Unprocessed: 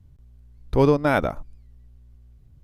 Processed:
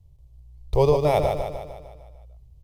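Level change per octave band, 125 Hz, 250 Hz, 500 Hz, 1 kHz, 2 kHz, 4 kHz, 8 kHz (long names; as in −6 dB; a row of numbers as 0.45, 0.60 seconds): 0.0 dB, −8.0 dB, +1.5 dB, +0.5 dB, −10.0 dB, +1.5 dB, can't be measured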